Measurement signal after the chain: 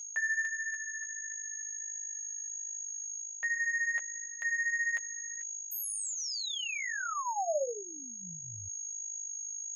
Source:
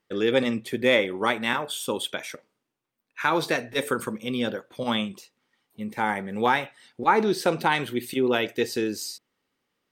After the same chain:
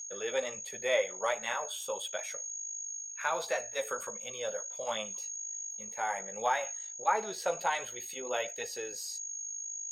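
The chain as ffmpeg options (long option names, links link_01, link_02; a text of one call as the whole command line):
ffmpeg -i in.wav -af "highpass=92,aeval=exprs='val(0)+0.0282*sin(2*PI*6600*n/s)':channel_layout=same,areverse,acompressor=mode=upward:threshold=-25dB:ratio=2.5,areverse,flanger=delay=9.3:depth=2.8:regen=-13:speed=1.4:shape=triangular,lowshelf=frequency=420:width_type=q:width=3:gain=-11,volume=-7dB" out.wav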